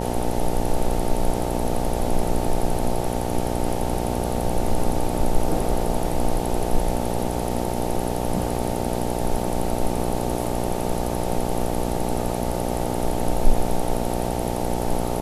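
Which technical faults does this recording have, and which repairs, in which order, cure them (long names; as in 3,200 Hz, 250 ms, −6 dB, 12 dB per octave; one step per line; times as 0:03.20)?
mains buzz 60 Hz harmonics 15 −26 dBFS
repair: hum removal 60 Hz, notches 15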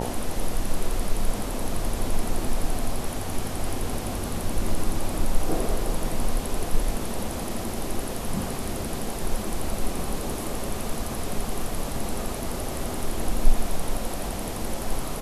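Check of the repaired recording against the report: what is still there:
none of them is left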